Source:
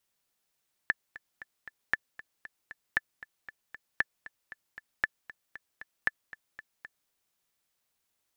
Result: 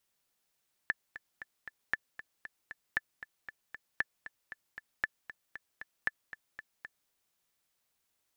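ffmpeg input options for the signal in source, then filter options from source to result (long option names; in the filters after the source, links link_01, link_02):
-f lavfi -i "aevalsrc='pow(10,(-11.5-18.5*gte(mod(t,4*60/232),60/232))/20)*sin(2*PI*1750*mod(t,60/232))*exp(-6.91*mod(t,60/232)/0.03)':duration=6.2:sample_rate=44100"
-af "alimiter=limit=-16dB:level=0:latency=1:release=49"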